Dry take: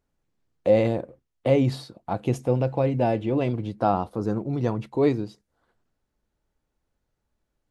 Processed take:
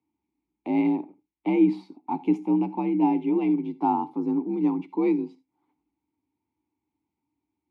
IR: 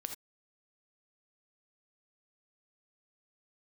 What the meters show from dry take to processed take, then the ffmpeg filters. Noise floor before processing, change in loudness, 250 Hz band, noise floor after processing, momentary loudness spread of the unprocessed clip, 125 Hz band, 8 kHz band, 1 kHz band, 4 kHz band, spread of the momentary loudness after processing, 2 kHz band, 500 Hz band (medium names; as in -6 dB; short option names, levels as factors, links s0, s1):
-79 dBFS, -0.5 dB, +4.5 dB, -85 dBFS, 10 LU, -12.0 dB, no reading, 0.0 dB, under -10 dB, 11 LU, -4.5 dB, -8.0 dB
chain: -filter_complex "[0:a]afreqshift=56,asplit=3[s0][s1][s2];[s0]bandpass=f=300:t=q:w=8,volume=1[s3];[s1]bandpass=f=870:t=q:w=8,volume=0.501[s4];[s2]bandpass=f=2240:t=q:w=8,volume=0.355[s5];[s3][s4][s5]amix=inputs=3:normalize=0,asplit=2[s6][s7];[1:a]atrim=start_sample=2205,highshelf=f=5900:g=12[s8];[s7][s8]afir=irnorm=-1:irlink=0,volume=0.299[s9];[s6][s9]amix=inputs=2:normalize=0,volume=2.51"